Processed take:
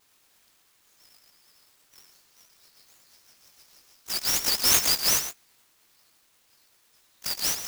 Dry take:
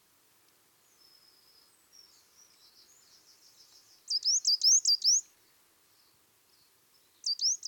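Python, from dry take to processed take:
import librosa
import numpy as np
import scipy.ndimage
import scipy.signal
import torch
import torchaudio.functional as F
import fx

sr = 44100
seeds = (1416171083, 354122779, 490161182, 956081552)

p1 = fx.frame_reverse(x, sr, frame_ms=43.0)
p2 = fx.tilt_eq(p1, sr, slope=3.0)
p3 = fx.vibrato(p2, sr, rate_hz=11.0, depth_cents=83.0)
p4 = p3 + fx.echo_single(p3, sr, ms=115, db=-11.0, dry=0)
p5 = fx.clock_jitter(p4, sr, seeds[0], jitter_ms=0.028)
y = p5 * 10.0 ** (-1.5 / 20.0)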